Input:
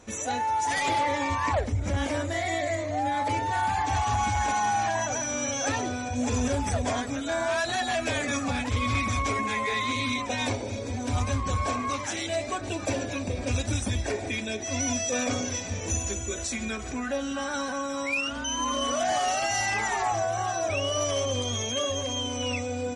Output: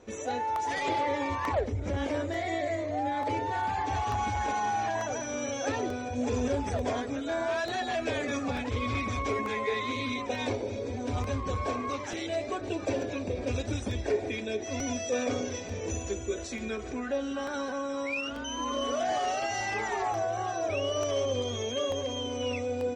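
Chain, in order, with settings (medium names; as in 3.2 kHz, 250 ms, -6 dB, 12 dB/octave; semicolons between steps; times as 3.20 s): low-pass 5.4 kHz 12 dB/octave; peaking EQ 420 Hz +10 dB 0.86 oct; crackling interface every 0.89 s, samples 64, repeat, from 0.56 s; trim -5.5 dB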